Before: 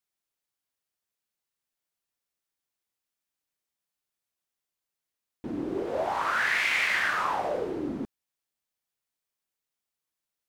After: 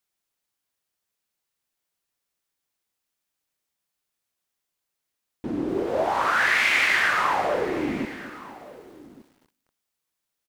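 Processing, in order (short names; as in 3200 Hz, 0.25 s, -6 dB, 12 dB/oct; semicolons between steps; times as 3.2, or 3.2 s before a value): echo 1.167 s -19.5 dB; on a send at -21.5 dB: reverb RT60 0.75 s, pre-delay 87 ms; on the sum: lo-fi delay 0.243 s, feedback 55%, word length 9-bit, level -13.5 dB; gain +5 dB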